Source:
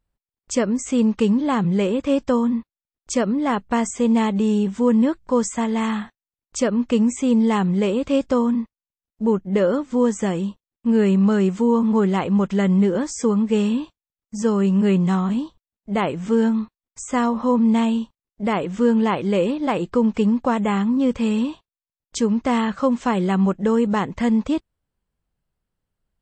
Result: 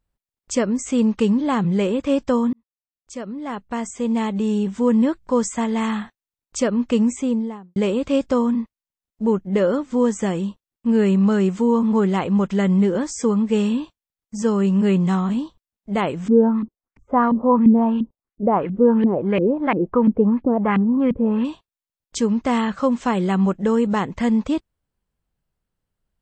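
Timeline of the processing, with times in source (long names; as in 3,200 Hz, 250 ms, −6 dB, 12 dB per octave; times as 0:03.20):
0:02.53–0:04.96: fade in
0:07.04–0:07.76: fade out and dull
0:16.28–0:21.45: auto-filter low-pass saw up 2.9 Hz 240–2,500 Hz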